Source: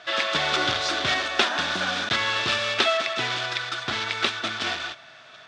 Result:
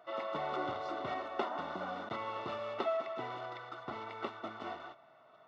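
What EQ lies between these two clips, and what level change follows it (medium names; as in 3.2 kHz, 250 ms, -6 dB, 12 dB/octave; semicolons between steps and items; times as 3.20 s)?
Savitzky-Golay filter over 65 samples; high-pass 260 Hz 6 dB/octave; -7.0 dB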